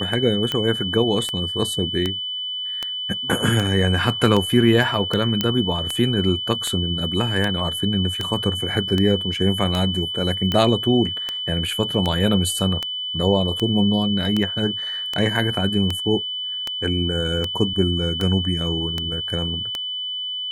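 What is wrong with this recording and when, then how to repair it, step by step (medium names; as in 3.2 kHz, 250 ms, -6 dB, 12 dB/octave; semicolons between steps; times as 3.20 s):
tick 78 rpm -9 dBFS
whine 3 kHz -25 dBFS
5.41 s: pop -5 dBFS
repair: de-click; band-stop 3 kHz, Q 30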